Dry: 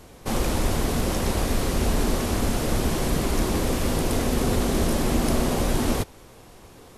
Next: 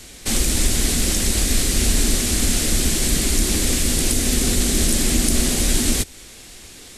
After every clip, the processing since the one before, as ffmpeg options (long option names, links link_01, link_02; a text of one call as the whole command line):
ffmpeg -i in.wav -filter_complex "[0:a]equalizer=frequency=125:width_type=o:width=1:gain=-9,equalizer=frequency=500:width_type=o:width=1:gain=-6,equalizer=frequency=1000:width_type=o:width=1:gain=-10,equalizer=frequency=2000:width_type=o:width=1:gain=5,equalizer=frequency=4000:width_type=o:width=1:gain=6,equalizer=frequency=8000:width_type=o:width=1:gain=10,acrossover=split=430|6500[link_01][link_02][link_03];[link_02]alimiter=level_in=0.5dB:limit=-24dB:level=0:latency=1:release=189,volume=-0.5dB[link_04];[link_01][link_04][link_03]amix=inputs=3:normalize=0,volume=6dB" out.wav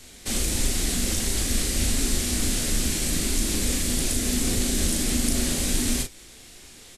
ffmpeg -i in.wav -filter_complex "[0:a]flanger=delay=7.3:depth=9:regen=66:speed=1.5:shape=sinusoidal,asplit=2[link_01][link_02];[link_02]adelay=37,volume=-5dB[link_03];[link_01][link_03]amix=inputs=2:normalize=0,volume=-2.5dB" out.wav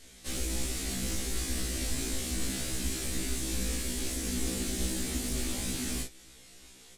ffmpeg -i in.wav -filter_complex "[0:a]acrossover=split=400|2800[link_01][link_02][link_03];[link_03]asoftclip=type=tanh:threshold=-24.5dB[link_04];[link_01][link_02][link_04]amix=inputs=3:normalize=0,afftfilt=real='re*1.73*eq(mod(b,3),0)':imag='im*1.73*eq(mod(b,3),0)':win_size=2048:overlap=0.75,volume=-5dB" out.wav